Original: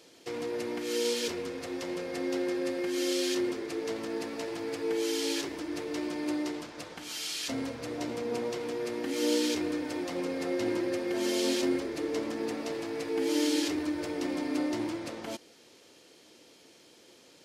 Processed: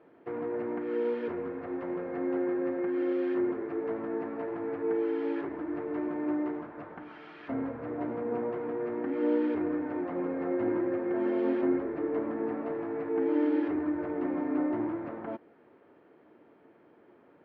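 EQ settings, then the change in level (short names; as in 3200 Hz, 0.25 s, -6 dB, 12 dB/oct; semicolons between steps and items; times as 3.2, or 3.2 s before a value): LPF 1600 Hz 24 dB/oct; low shelf 67 Hz -8.5 dB; notch 510 Hz, Q 12; +2.0 dB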